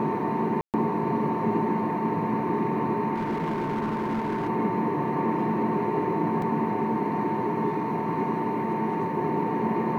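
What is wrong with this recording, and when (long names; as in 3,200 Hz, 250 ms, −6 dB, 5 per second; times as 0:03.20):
whistle 900 Hz −30 dBFS
0:00.61–0:00.74: drop-out 128 ms
0:03.14–0:04.49: clipping −24 dBFS
0:06.42: drop-out 2.6 ms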